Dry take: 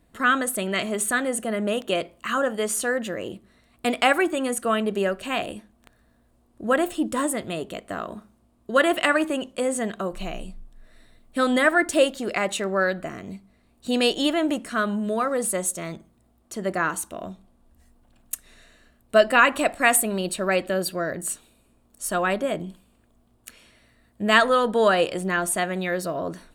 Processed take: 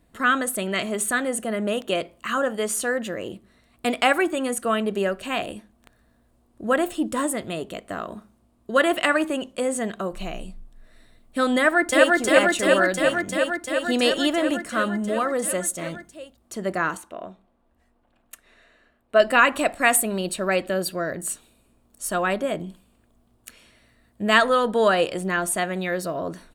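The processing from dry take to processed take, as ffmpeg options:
ffmpeg -i in.wav -filter_complex "[0:a]asplit=2[link_01][link_02];[link_02]afade=type=in:start_time=11.57:duration=0.01,afade=type=out:start_time=12.16:duration=0.01,aecho=0:1:350|700|1050|1400|1750|2100|2450|2800|3150|3500|3850|4200:1|0.8|0.64|0.512|0.4096|0.32768|0.262144|0.209715|0.167772|0.134218|0.107374|0.0858993[link_03];[link_01][link_03]amix=inputs=2:normalize=0,asettb=1/sr,asplit=3[link_04][link_05][link_06];[link_04]atrim=end=16.974[link_07];[link_05]atrim=start=16.97:end=19.2,asetpts=PTS-STARTPTS,afade=type=in:duration=0.004:curve=qsin,afade=type=out:start_time=2.226:duration=0.004:curve=qsin,bass=frequency=250:gain=-10,treble=frequency=4000:gain=-14[link_08];[link_06]atrim=start=19.196[link_09];[link_07][link_08]acrossfade=duration=0.004:curve1=hsin:curve2=qsin[link_10];[link_10][link_09]acrossfade=duration=0.004:curve1=qsin:curve2=hsin" out.wav

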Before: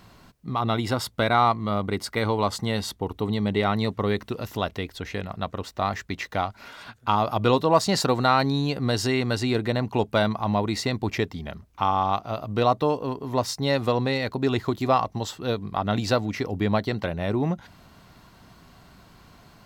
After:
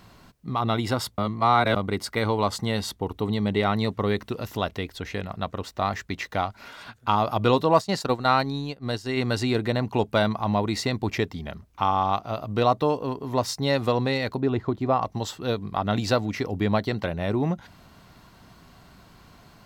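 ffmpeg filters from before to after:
ffmpeg -i in.wav -filter_complex "[0:a]asplit=3[link_01][link_02][link_03];[link_01]afade=type=out:start_time=7.79:duration=0.02[link_04];[link_02]agate=range=-33dB:threshold=-19dB:ratio=3:release=100:detection=peak,afade=type=in:start_time=7.79:duration=0.02,afade=type=out:start_time=9.16:duration=0.02[link_05];[link_03]afade=type=in:start_time=9.16:duration=0.02[link_06];[link_04][link_05][link_06]amix=inputs=3:normalize=0,asettb=1/sr,asplit=3[link_07][link_08][link_09];[link_07]atrim=end=14.404[link_10];[link_08]atrim=start=14.4:end=15.02,asetpts=PTS-STARTPTS,afade=type=in:duration=0.004:curve=qsin,afade=type=out:start_time=0.616:duration=0.004:curve=qsin,lowpass=frequency=1000:poles=1[link_11];[link_09]atrim=start=15.016[link_12];[link_10][link_11]acrossfade=duration=0.004:curve1=hsin:curve2=qsin[link_13];[link_13][link_12]acrossfade=duration=0.004:curve1=qsin:curve2=hsin,asplit=3[link_14][link_15][link_16];[link_14]atrim=end=1.182[link_17];[link_15]atrim=start=1.178:end=1.762,asetpts=PTS-STARTPTS,areverse[link_18];[link_16]atrim=start=1.758[link_19];[link_17][link_18]acrossfade=duration=0.004:curve1=hsin:curve2=hsin[link_20];[link_20][link_19]acrossfade=duration=0.004:curve1=hsin:curve2=hsin" out.wav

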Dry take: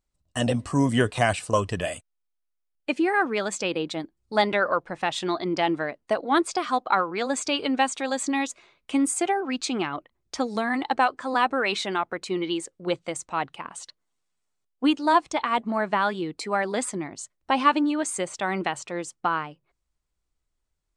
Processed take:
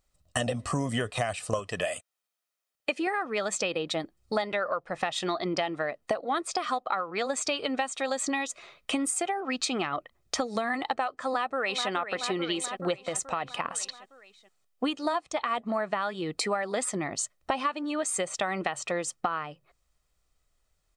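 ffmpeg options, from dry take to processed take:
ffmpeg -i in.wav -filter_complex "[0:a]asettb=1/sr,asplit=3[link_01][link_02][link_03];[link_01]atrim=end=1.594[link_04];[link_02]atrim=start=1.59:end=3.07,asetpts=PTS-STARTPTS,afade=type=in:duration=0.004:curve=qsin,afade=type=out:start_time=1.476:duration=0.004:curve=qsin,highpass=frequency=250:poles=1[link_05];[link_03]atrim=start=3.066[link_06];[link_04][link_05]acrossfade=duration=0.004:curve1=hsin:curve2=qsin[link_07];[link_07][link_06]acrossfade=duration=0.004:curve1=qsin:curve2=hsin,asplit=2[link_08][link_09];[link_09]afade=type=in:start_time=11.25:duration=0.01,afade=type=out:start_time=11.9:duration=0.01,aecho=0:1:430|860|1290|1720|2150|2580:0.251189|0.138154|0.0759846|0.0417915|0.0229853|0.0126419[link_10];[link_08][link_10]amix=inputs=2:normalize=0,asettb=1/sr,asplit=3[link_11][link_12][link_13];[link_11]atrim=end=13.014[link_14];[link_12]atrim=start=13.01:end=13.52,asetpts=PTS-STARTPTS,afade=type=in:duration=0.004:curve=qsin,afade=type=out:start_time=0.506:duration=0.004:curve=qsin,acompressor=threshold=-28dB:ratio=6:attack=3.2:release=140:knee=1:detection=peak[link_15];[link_13]atrim=start=13.516[link_16];[link_14][link_15]acrossfade=duration=0.004:curve1=hsin:curve2=qsin[link_17];[link_17][link_16]acrossfade=duration=0.004:curve1=qsin:curve2=hsin,lowshelf=frequency=200:gain=-5.5,aecho=1:1:1.6:0.38,acompressor=threshold=-34dB:ratio=10,volume=8dB" out.wav

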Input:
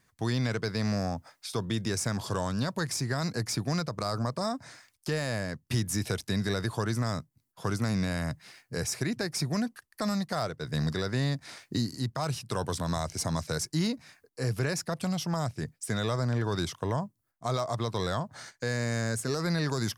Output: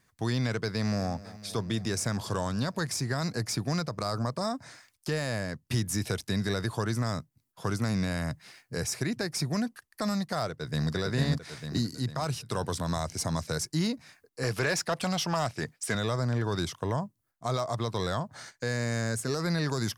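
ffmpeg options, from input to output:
ffmpeg -i in.wav -filter_complex "[0:a]asplit=2[link_01][link_02];[link_02]afade=type=in:start_time=0.7:duration=0.01,afade=type=out:start_time=1.11:duration=0.01,aecho=0:1:250|500|750|1000|1250|1500|1750|2000|2250|2500|2750|3000:0.133352|0.106682|0.0853454|0.0682763|0.054621|0.0436968|0.0349575|0.027966|0.0223728|0.0178982|0.0143186|0.0114549[link_03];[link_01][link_03]amix=inputs=2:normalize=0,asplit=2[link_04][link_05];[link_05]afade=type=in:start_time=10.49:duration=0.01,afade=type=out:start_time=10.93:duration=0.01,aecho=0:1:450|900|1350|1800|2250|2700:0.891251|0.401063|0.180478|0.0812152|0.0365469|0.0164461[link_06];[link_04][link_06]amix=inputs=2:normalize=0,asettb=1/sr,asplit=3[link_07][link_08][link_09];[link_07]atrim=end=14.434[link_10];[link_08]atrim=start=14.43:end=15.95,asetpts=PTS-STARTPTS,afade=type=in:duration=0.004:curve=qsin,afade=type=out:start_time=1.516:duration=0.004:curve=qsin,asplit=2[link_11][link_12];[link_12]highpass=frequency=720:poles=1,volume=15dB,asoftclip=type=tanh:threshold=-17dB[link_13];[link_11][link_13]amix=inputs=2:normalize=0,lowpass=frequency=4700:poles=1,volume=-6dB[link_14];[link_09]atrim=start=15.946[link_15];[link_10][link_14]acrossfade=duration=0.004:curve1=hsin:curve2=qsin[link_16];[link_16][link_15]acrossfade=duration=0.004:curve1=qsin:curve2=hsin" out.wav

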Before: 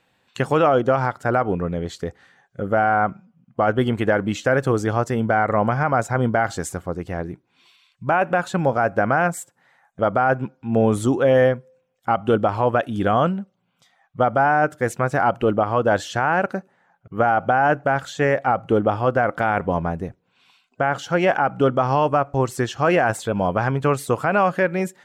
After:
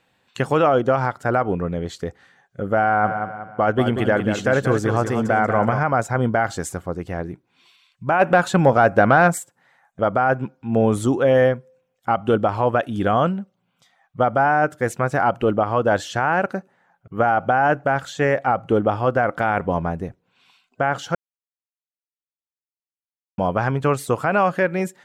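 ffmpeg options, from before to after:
ffmpeg -i in.wav -filter_complex "[0:a]asplit=3[link_01][link_02][link_03];[link_01]afade=type=out:start_time=3.03:duration=0.02[link_04];[link_02]aecho=1:1:187|374|561|748|935:0.422|0.169|0.0675|0.027|0.0108,afade=type=in:start_time=3.03:duration=0.02,afade=type=out:start_time=5.78:duration=0.02[link_05];[link_03]afade=type=in:start_time=5.78:duration=0.02[link_06];[link_04][link_05][link_06]amix=inputs=3:normalize=0,asplit=3[link_07][link_08][link_09];[link_07]afade=type=out:start_time=8.19:duration=0.02[link_10];[link_08]acontrast=37,afade=type=in:start_time=8.19:duration=0.02,afade=type=out:start_time=9.37:duration=0.02[link_11];[link_09]afade=type=in:start_time=9.37:duration=0.02[link_12];[link_10][link_11][link_12]amix=inputs=3:normalize=0,asplit=3[link_13][link_14][link_15];[link_13]atrim=end=21.15,asetpts=PTS-STARTPTS,afade=type=out:start_time=21.146:duration=0.004:curve=hsin[link_16];[link_14]atrim=start=21.15:end=23.38,asetpts=PTS-STARTPTS,volume=0[link_17];[link_15]atrim=start=23.38,asetpts=PTS-STARTPTS,afade=type=in:duration=0.004:curve=hsin[link_18];[link_16][link_17][link_18]concat=n=3:v=0:a=1" out.wav

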